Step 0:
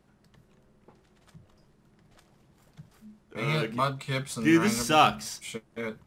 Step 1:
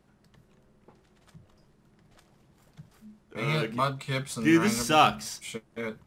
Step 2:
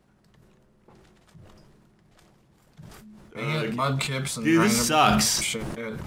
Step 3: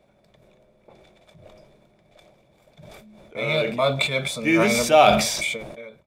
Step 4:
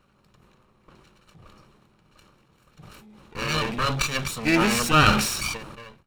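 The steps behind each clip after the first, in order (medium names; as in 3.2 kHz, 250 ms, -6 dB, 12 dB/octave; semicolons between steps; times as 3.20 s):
no audible change
decay stretcher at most 23 dB/s
fade out at the end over 0.88 s; small resonant body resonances 600/2300/3500 Hz, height 16 dB, ringing for 20 ms; trim -2.5 dB
comb filter that takes the minimum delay 0.72 ms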